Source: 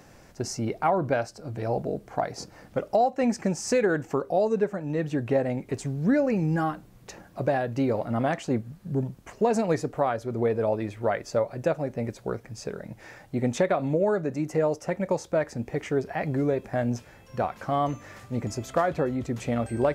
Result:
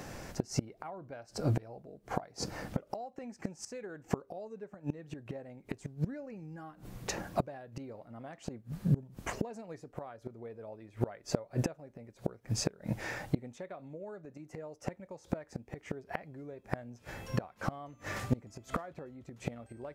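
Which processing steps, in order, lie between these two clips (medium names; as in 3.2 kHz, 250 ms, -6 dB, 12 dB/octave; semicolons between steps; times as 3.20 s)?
inverted gate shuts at -24 dBFS, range -28 dB; trim +7 dB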